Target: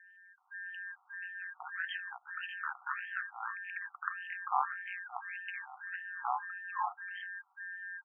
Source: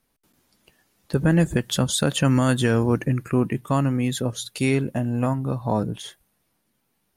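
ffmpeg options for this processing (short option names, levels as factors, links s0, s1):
-filter_complex "[0:a]lowpass=11000,highshelf=f=4400:t=q:w=1.5:g=9.5,bandreject=f=70.49:t=h:w=4,bandreject=f=140.98:t=h:w=4,bandreject=f=211.47:t=h:w=4,acompressor=threshold=0.0251:ratio=4,atempo=0.89,aeval=exprs='val(0)+0.00316*sin(2*PI*1700*n/s)':c=same,aeval=exprs='val(0)*sin(2*PI*92*n/s)':c=same,acrossover=split=330|2500[s0][s1][s2];[s0]adelay=220[s3];[s1]adelay=380[s4];[s3][s4][s2]amix=inputs=3:normalize=0,afftfilt=real='re*between(b*sr/1024,990*pow(2300/990,0.5+0.5*sin(2*PI*1.7*pts/sr))/1.41,990*pow(2300/990,0.5+0.5*sin(2*PI*1.7*pts/sr))*1.41)':imag='im*between(b*sr/1024,990*pow(2300/990,0.5+0.5*sin(2*PI*1.7*pts/sr))/1.41,990*pow(2300/990,0.5+0.5*sin(2*PI*1.7*pts/sr))*1.41)':win_size=1024:overlap=0.75,volume=4.22"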